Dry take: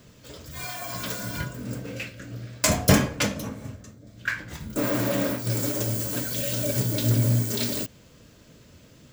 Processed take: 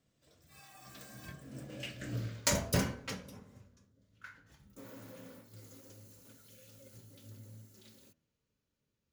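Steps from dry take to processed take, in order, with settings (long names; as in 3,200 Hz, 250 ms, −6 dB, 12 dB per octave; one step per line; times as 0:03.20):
source passing by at 0:02.16, 29 m/s, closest 4 metres
hum removal 80.56 Hz, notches 22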